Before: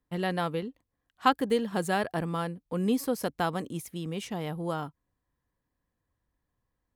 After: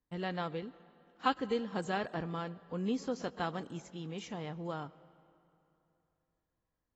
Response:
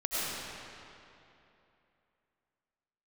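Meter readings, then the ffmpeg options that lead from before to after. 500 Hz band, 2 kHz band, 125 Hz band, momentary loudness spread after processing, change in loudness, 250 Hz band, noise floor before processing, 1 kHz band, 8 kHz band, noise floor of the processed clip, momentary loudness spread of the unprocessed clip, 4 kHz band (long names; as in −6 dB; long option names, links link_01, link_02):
−7.0 dB, −6.5 dB, −7.0 dB, 9 LU, −7.0 dB, −7.0 dB, −83 dBFS, −7.0 dB, −11.0 dB, below −85 dBFS, 9 LU, −6.5 dB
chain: -filter_complex "[0:a]asplit=2[link_01][link_02];[1:a]atrim=start_sample=2205[link_03];[link_02][link_03]afir=irnorm=-1:irlink=0,volume=-27.5dB[link_04];[link_01][link_04]amix=inputs=2:normalize=0,volume=-7.5dB" -ar 24000 -c:a aac -b:a 24k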